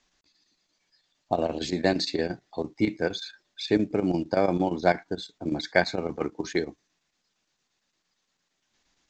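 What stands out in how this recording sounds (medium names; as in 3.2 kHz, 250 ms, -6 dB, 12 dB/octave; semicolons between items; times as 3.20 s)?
chopped level 8.7 Hz, depth 65%, duty 80%; µ-law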